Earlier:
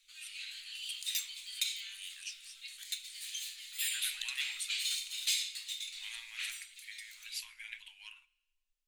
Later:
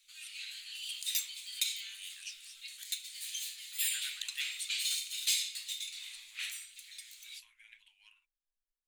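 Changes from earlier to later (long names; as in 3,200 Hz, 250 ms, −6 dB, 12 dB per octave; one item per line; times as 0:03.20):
second voice −8.5 dB
background: add high-shelf EQ 6,700 Hz +6 dB
reverb: off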